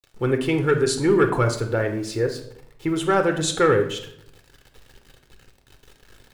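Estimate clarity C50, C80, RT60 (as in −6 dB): 9.5 dB, 13.0 dB, 0.70 s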